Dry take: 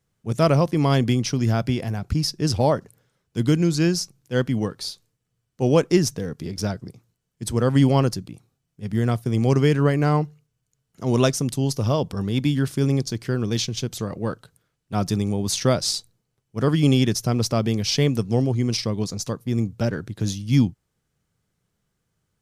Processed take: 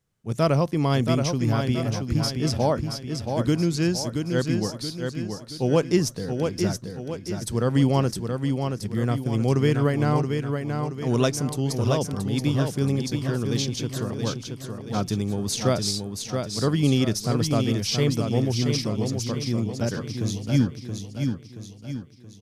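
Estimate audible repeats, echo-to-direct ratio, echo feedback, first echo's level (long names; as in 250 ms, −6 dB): 5, −4.5 dB, 46%, −5.5 dB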